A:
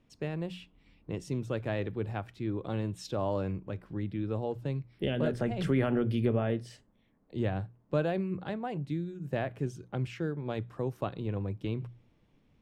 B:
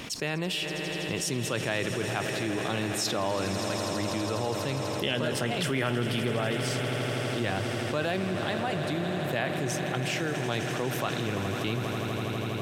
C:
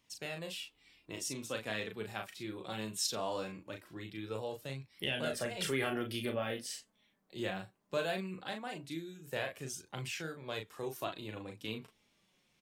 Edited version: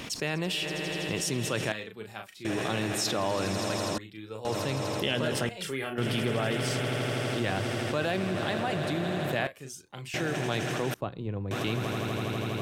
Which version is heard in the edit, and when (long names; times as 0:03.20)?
B
0:01.72–0:02.45: punch in from C
0:03.98–0:04.45: punch in from C
0:05.49–0:05.98: punch in from C
0:09.47–0:10.14: punch in from C
0:10.94–0:11.51: punch in from A